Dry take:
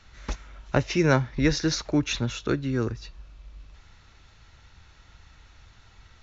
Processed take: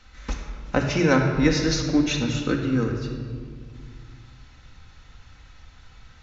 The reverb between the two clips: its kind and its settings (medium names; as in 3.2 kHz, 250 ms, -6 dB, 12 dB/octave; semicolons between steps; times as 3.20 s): simulated room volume 3100 m³, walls mixed, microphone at 2 m